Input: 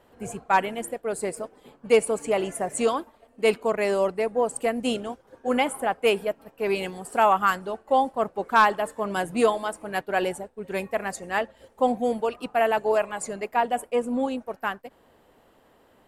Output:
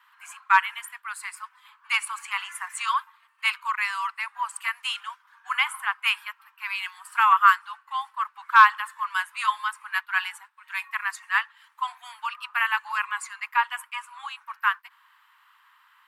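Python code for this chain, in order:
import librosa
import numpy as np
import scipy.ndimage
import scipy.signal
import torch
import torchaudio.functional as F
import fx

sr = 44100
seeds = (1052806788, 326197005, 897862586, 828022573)

y = scipy.signal.sosfilt(scipy.signal.butter(12, 1000.0, 'highpass', fs=sr, output='sos'), x)
y = fx.high_shelf(y, sr, hz=5200.0, db=-4.5)
y = fx.rider(y, sr, range_db=3, speed_s=2.0)
y = fx.peak_eq(y, sr, hz=7500.0, db=-9.5, octaves=1.7)
y = y * librosa.db_to_amplitude(6.5)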